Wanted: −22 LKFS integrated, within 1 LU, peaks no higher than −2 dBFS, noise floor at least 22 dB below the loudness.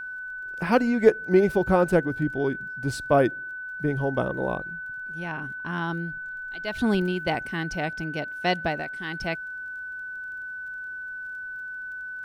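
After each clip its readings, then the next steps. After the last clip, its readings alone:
crackle rate 21 per second; interfering tone 1,500 Hz; level of the tone −33 dBFS; integrated loudness −27.0 LKFS; sample peak −5.0 dBFS; target loudness −22.0 LKFS
→ click removal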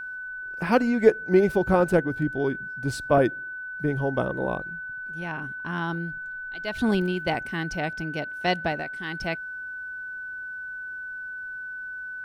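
crackle rate 0.25 per second; interfering tone 1,500 Hz; level of the tone −33 dBFS
→ notch filter 1,500 Hz, Q 30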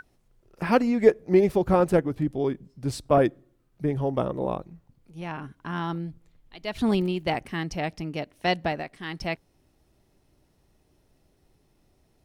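interfering tone none found; integrated loudness −26.5 LKFS; sample peak −5.0 dBFS; target loudness −22.0 LKFS
→ level +4.5 dB
brickwall limiter −2 dBFS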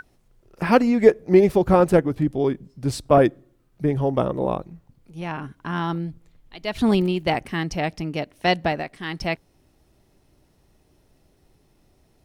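integrated loudness −22.0 LKFS; sample peak −2.0 dBFS; background noise floor −62 dBFS

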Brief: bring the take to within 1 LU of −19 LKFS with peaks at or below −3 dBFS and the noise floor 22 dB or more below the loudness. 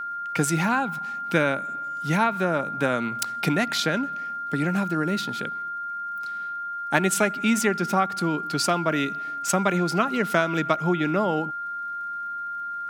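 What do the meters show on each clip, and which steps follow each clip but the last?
crackle rate 39 per second; interfering tone 1,400 Hz; level of the tone −29 dBFS; integrated loudness −25.0 LKFS; sample peak −4.5 dBFS; target loudness −19.0 LKFS
→ click removal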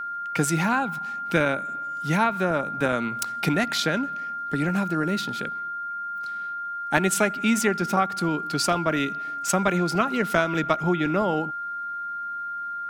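crackle rate 1.1 per second; interfering tone 1,400 Hz; level of the tone −29 dBFS
→ notch filter 1,400 Hz, Q 30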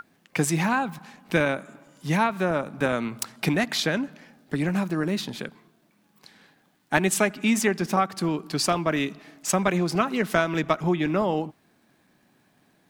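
interfering tone none found; integrated loudness −25.5 LKFS; sample peak −5.0 dBFS; target loudness −19.0 LKFS
→ level +6.5 dB
brickwall limiter −3 dBFS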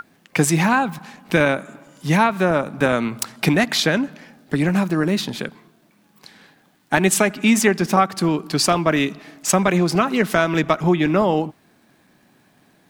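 integrated loudness −19.0 LKFS; sample peak −3.0 dBFS; background noise floor −58 dBFS

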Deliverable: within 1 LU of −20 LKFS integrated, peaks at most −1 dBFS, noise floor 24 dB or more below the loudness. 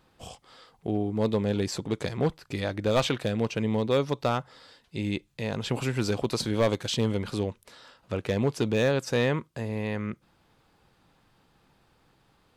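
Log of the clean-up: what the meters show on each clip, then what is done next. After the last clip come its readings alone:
share of clipped samples 0.4%; peaks flattened at −17.0 dBFS; integrated loudness −28.5 LKFS; sample peak −17.0 dBFS; target loudness −20.0 LKFS
→ clipped peaks rebuilt −17 dBFS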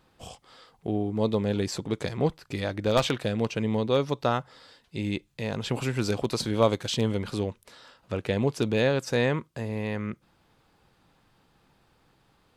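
share of clipped samples 0.0%; integrated loudness −28.0 LKFS; sample peak −8.0 dBFS; target loudness −20.0 LKFS
→ level +8 dB
brickwall limiter −1 dBFS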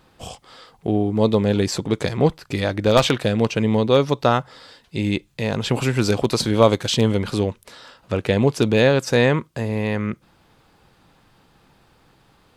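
integrated loudness −20.0 LKFS; sample peak −1.0 dBFS; background noise floor −58 dBFS

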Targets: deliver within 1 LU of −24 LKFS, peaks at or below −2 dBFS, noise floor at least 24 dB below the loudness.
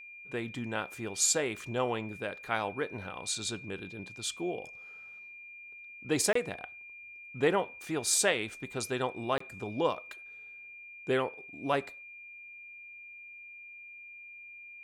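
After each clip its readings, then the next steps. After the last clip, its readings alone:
number of dropouts 2; longest dropout 24 ms; interfering tone 2,400 Hz; level of the tone −46 dBFS; integrated loudness −32.5 LKFS; sample peak −13.0 dBFS; target loudness −24.0 LKFS
→ repair the gap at 0:06.33/0:09.38, 24 ms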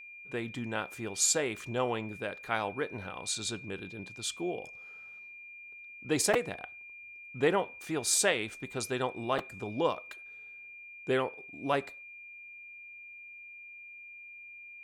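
number of dropouts 0; interfering tone 2,400 Hz; level of the tone −46 dBFS
→ notch filter 2,400 Hz, Q 30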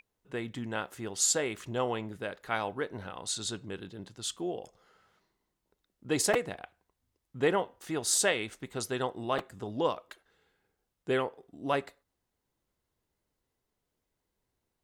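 interfering tone none found; integrated loudness −32.5 LKFS; sample peak −13.5 dBFS; target loudness −24.0 LKFS
→ level +8.5 dB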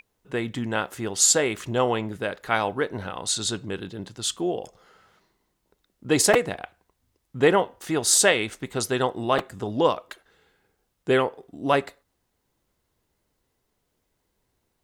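integrated loudness −24.0 LKFS; sample peak −5.0 dBFS; background noise floor −75 dBFS

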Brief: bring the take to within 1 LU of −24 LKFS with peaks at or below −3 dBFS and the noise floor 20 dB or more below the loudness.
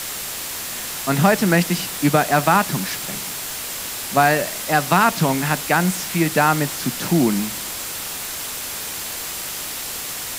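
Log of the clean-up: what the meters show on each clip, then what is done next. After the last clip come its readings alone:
interfering tone 7,600 Hz; level of the tone −41 dBFS; background noise floor −29 dBFS; target noise floor −41 dBFS; integrated loudness −20.5 LKFS; sample peak −2.0 dBFS; target loudness −24.0 LKFS
→ notch filter 7,600 Hz, Q 30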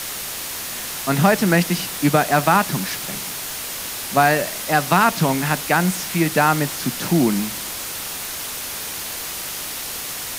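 interfering tone none found; background noise floor −30 dBFS; target noise floor −41 dBFS
→ broadband denoise 11 dB, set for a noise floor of −30 dBFS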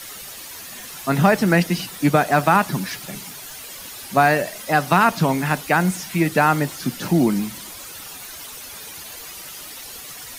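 background noise floor −37 dBFS; target noise floor −40 dBFS
→ broadband denoise 6 dB, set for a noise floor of −37 dBFS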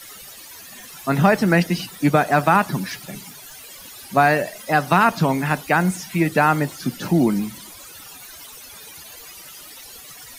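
background noise floor −41 dBFS; integrated loudness −19.5 LKFS; sample peak −2.0 dBFS; target loudness −24.0 LKFS
→ level −4.5 dB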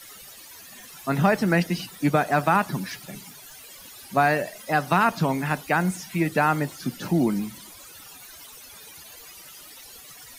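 integrated loudness −24.0 LKFS; sample peak −6.5 dBFS; background noise floor −45 dBFS

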